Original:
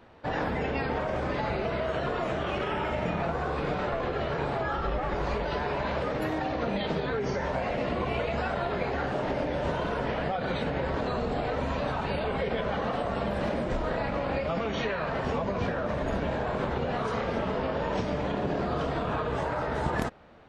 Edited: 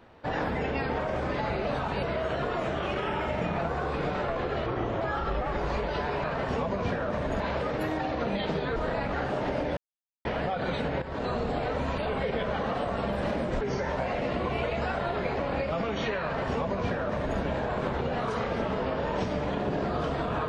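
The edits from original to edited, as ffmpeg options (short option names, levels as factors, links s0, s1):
-filter_complex "[0:a]asplit=15[s0][s1][s2][s3][s4][s5][s6][s7][s8][s9][s10][s11][s12][s13][s14];[s0]atrim=end=1.672[s15];[s1]atrim=start=11.798:end=12.162[s16];[s2]atrim=start=1.668:end=4.304[s17];[s3]atrim=start=4.3:end=4.58,asetpts=PTS-STARTPTS,asetrate=35280,aresample=44100[s18];[s4]atrim=start=4.576:end=5.812[s19];[s5]atrim=start=14.998:end=16.162[s20];[s6]atrim=start=5.808:end=7.172[s21];[s7]atrim=start=13.788:end=14.162[s22];[s8]atrim=start=8.948:end=9.59,asetpts=PTS-STARTPTS,afade=t=out:st=0.638:d=0.004:c=hsin[s23];[s9]atrim=start=9.59:end=10.07,asetpts=PTS-STARTPTS,volume=0[s24];[s10]atrim=start=10.07:end=10.84,asetpts=PTS-STARTPTS,afade=t=in:d=0.004:c=hsin,afade=t=out:st=0.766:d=0.004:c=hsin:silence=0.237137[s25];[s11]atrim=start=10.84:end=11.802,asetpts=PTS-STARTPTS,afade=t=in:d=0.25:silence=0.237137[s26];[s12]atrim=start=12.158:end=13.792[s27];[s13]atrim=start=7.168:end=8.952[s28];[s14]atrim=start=14.158[s29];[s15][s16]acrossfade=d=0.004:c1=hsin:c2=hsin[s30];[s30][s17]acrossfade=d=0.004:c1=hsin:c2=hsin[s31];[s31][s18]acrossfade=d=0.004:c1=hsin:c2=hsin[s32];[s32][s19]acrossfade=d=0.004:c1=hsin:c2=hsin[s33];[s33][s20]acrossfade=d=0.004:c1=hsin:c2=hsin[s34];[s34][s21]acrossfade=d=0.004:c1=hsin:c2=hsin[s35];[s35][s22]acrossfade=d=0.004:c1=hsin:c2=hsin[s36];[s23][s24][s25][s26]concat=n=4:v=0:a=1[s37];[s36][s37]acrossfade=d=0.004:c1=hsin:c2=hsin[s38];[s38][s27]acrossfade=d=0.004:c1=hsin:c2=hsin[s39];[s39][s28]acrossfade=d=0.004:c1=hsin:c2=hsin[s40];[s40][s29]acrossfade=d=0.004:c1=hsin:c2=hsin"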